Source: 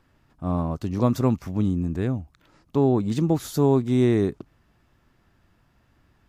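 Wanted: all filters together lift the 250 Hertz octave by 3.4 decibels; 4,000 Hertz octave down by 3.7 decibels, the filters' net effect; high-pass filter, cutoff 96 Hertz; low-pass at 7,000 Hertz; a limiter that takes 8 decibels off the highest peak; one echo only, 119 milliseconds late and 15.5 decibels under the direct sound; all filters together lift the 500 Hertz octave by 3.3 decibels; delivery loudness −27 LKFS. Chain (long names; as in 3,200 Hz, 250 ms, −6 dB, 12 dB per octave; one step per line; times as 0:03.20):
high-pass filter 96 Hz
low-pass filter 7,000 Hz
parametric band 250 Hz +3.5 dB
parametric band 500 Hz +3 dB
parametric band 4,000 Hz −4 dB
brickwall limiter −11.5 dBFS
single-tap delay 119 ms −15.5 dB
level −3.5 dB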